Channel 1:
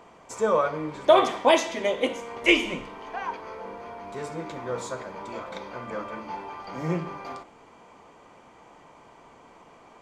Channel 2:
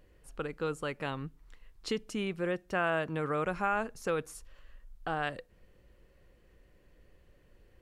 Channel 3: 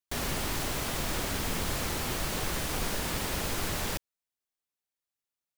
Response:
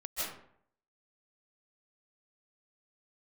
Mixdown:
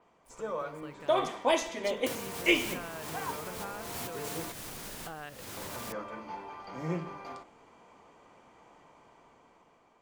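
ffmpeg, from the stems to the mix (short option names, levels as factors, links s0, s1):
-filter_complex "[0:a]volume=0.2,asplit=3[s0][s1][s2];[s0]atrim=end=4.52,asetpts=PTS-STARTPTS,afade=t=out:st=4.516:d=0.004:c=hsin[s3];[s1]atrim=start=4.52:end=5.57,asetpts=PTS-STARTPTS,volume=0[s4];[s2]atrim=start=5.57,asetpts=PTS-STARTPTS,afade=t=in:d=0.004:c=hsin[s5];[s3][s4][s5]concat=n=3:v=0:a=1[s6];[1:a]volume=0.299,asplit=2[s7][s8];[2:a]highpass=f=85:w=0.5412,highpass=f=85:w=1.3066,alimiter=level_in=1.06:limit=0.0631:level=0:latency=1:release=79,volume=0.944,adelay=1950,volume=0.841,afade=t=out:st=4.32:d=0.21:silence=0.223872[s9];[s8]apad=whole_len=336244[s10];[s9][s10]sidechaincompress=threshold=0.00501:ratio=8:attack=16:release=327[s11];[s7][s11]amix=inputs=2:normalize=0,aeval=exprs='val(0)*gte(abs(val(0)),0.00112)':c=same,acompressor=threshold=0.00398:ratio=4,volume=1[s12];[s6][s12]amix=inputs=2:normalize=0,dynaudnorm=f=510:g=5:m=2.51,adynamicequalizer=threshold=0.00316:dfrequency=6200:dqfactor=0.7:tfrequency=6200:tqfactor=0.7:attack=5:release=100:ratio=0.375:range=2.5:mode=boostabove:tftype=highshelf"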